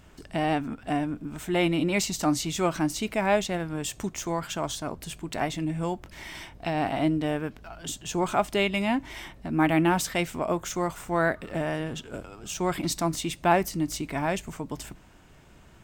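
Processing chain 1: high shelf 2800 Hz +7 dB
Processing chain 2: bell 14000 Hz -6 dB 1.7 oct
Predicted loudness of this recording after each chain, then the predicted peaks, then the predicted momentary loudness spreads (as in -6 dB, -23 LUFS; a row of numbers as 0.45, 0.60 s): -27.0, -28.5 LUFS; -6.5, -8.0 dBFS; 12, 13 LU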